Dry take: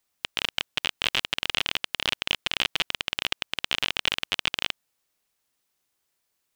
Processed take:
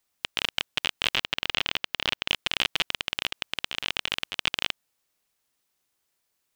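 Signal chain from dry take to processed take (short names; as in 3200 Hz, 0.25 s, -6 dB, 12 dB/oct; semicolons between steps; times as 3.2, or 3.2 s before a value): 1.15–2.28 bell 9700 Hz -8 dB 1.1 oct; 2.98–4.35 negative-ratio compressor -31 dBFS, ratio -1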